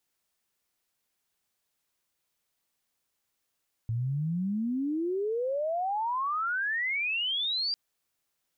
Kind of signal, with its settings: chirp logarithmic 110 Hz -> 4800 Hz -27 dBFS -> -27 dBFS 3.85 s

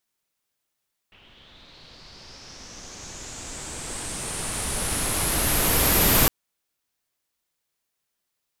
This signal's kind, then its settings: swept filtered noise pink, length 5.16 s lowpass, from 2800 Hz, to 13000 Hz, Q 4.8, linear, gain ramp +37 dB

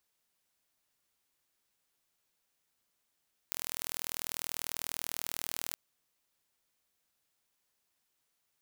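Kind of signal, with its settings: pulse train 40.1/s, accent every 0, -8.5 dBFS 2.22 s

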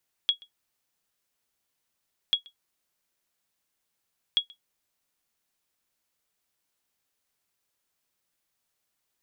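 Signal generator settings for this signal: sonar ping 3330 Hz, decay 0.11 s, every 2.04 s, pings 3, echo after 0.13 s, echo -26 dB -13.5 dBFS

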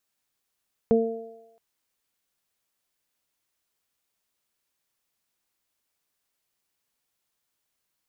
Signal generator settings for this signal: additive tone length 0.67 s, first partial 227 Hz, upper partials 2.5/-11 dB, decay 0.67 s, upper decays 0.87/1.25 s, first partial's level -18.5 dB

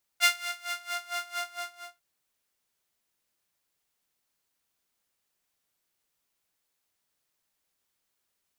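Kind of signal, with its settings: synth patch with tremolo F5, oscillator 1 saw, oscillator 2 saw, sub -16 dB, noise -27.5 dB, filter highpass, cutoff 970 Hz, Q 1.3, filter envelope 1 oct, filter decay 0.94 s, filter sustain 35%, attack 36 ms, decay 0.22 s, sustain -13 dB, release 0.61 s, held 1.19 s, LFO 4.4 Hz, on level 20.5 dB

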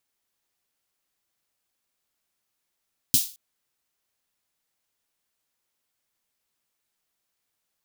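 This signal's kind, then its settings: snare drum length 0.22 s, tones 140 Hz, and 260 Hz, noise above 3500 Hz, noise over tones 9 dB, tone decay 0.09 s, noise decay 0.34 s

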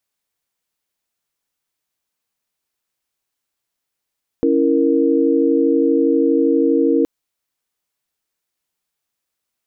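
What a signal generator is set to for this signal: chord C#4/E4/A#4 sine, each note -16.5 dBFS 2.62 s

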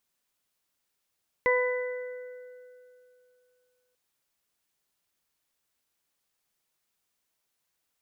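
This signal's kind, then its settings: additive tone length 2.49 s, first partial 499 Hz, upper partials -5/-18.5/-1.5 dB, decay 2.76 s, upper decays 1.14/3.13/1.60 s, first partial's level -22 dB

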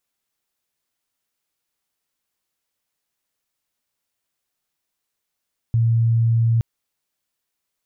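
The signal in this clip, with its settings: tone sine 115 Hz -14 dBFS 0.87 s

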